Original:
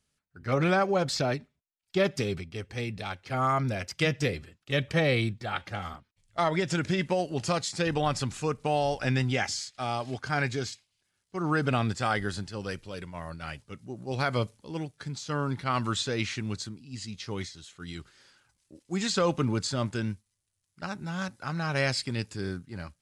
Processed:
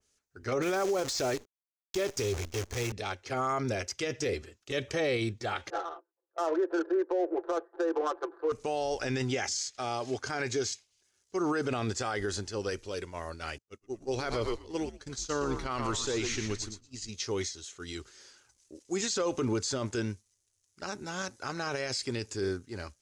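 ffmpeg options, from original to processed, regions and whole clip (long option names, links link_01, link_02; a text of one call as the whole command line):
ffmpeg -i in.wav -filter_complex "[0:a]asettb=1/sr,asplit=3[link_01][link_02][link_03];[link_01]atrim=end=0.624[link_04];[link_02]atrim=start=0.62:end=2.92,asetpts=PTS-STARTPTS,afade=type=in:duration=0.004:curve=qsin,afade=type=out:start_time=2.296:duration=0.004:curve=qsin,asubboost=boost=9.5:cutoff=82,acrusher=bits=7:dc=4:mix=0:aa=0.000001[link_05];[link_03]atrim=start=2.916[link_06];[link_04][link_05]acrossfade=duration=0.004:curve1=hsin:curve2=qsin[link_07];[link_07][link_06]acrossfade=duration=0.004:curve1=qsin:curve2=hsin,asettb=1/sr,asplit=3[link_08][link_09][link_10];[link_08]atrim=end=5.704[link_11];[link_09]atrim=start=5.7:end=8.52,asetpts=PTS-STARTPTS,afade=type=in:duration=0.004:curve=qsin,afade=type=out:start_time=2.816:duration=0.004:curve=qsin,asuperpass=centerf=740:order=20:qfactor=0.54,aecho=1:1:5.9:0.91,atrim=end_sample=124362,adynamicsmooth=sensitivity=4.5:basefreq=840[link_12];[link_10]atrim=start=8.516[link_13];[link_11][link_12]acrossfade=duration=0.004:curve1=hsin:curve2=qsin[link_14];[link_14][link_13]acrossfade=duration=0.004:curve1=qsin:curve2=hsin,asettb=1/sr,asplit=3[link_15][link_16][link_17];[link_15]atrim=end=13.584[link_18];[link_16]atrim=start=13.58:end=17.09,asetpts=PTS-STARTPTS,afade=type=in:duration=0.004:curve=qsin,afade=type=out:start_time=3.506:duration=0.004:curve=qsin,asplit=5[link_19][link_20][link_21][link_22][link_23];[link_20]adelay=118,afreqshift=-100,volume=-7.5dB[link_24];[link_21]adelay=236,afreqshift=-200,volume=-15.9dB[link_25];[link_22]adelay=354,afreqshift=-300,volume=-24.3dB[link_26];[link_23]adelay=472,afreqshift=-400,volume=-32.7dB[link_27];[link_19][link_24][link_25][link_26][link_27]amix=inputs=5:normalize=0,atrim=end_sample=154791,agate=range=-33dB:threshold=-34dB:ratio=3:release=100:detection=peak[link_28];[link_17]atrim=start=17.086[link_29];[link_18][link_28]acrossfade=duration=0.004:curve1=hsin:curve2=qsin[link_30];[link_30][link_29]acrossfade=duration=0.004:curve1=qsin:curve2=hsin,equalizer=frequency=160:width_type=o:width=0.67:gain=-12,equalizer=frequency=400:width_type=o:width=0.67:gain=8,equalizer=frequency=6300:width_type=o:width=0.67:gain=12,alimiter=limit=-22dB:level=0:latency=1:release=29,adynamicequalizer=threshold=0.00501:dfrequency=3000:dqfactor=0.7:tfrequency=3000:tqfactor=0.7:attack=5:release=100:ratio=0.375:range=1.5:mode=cutabove:tftype=highshelf" out.wav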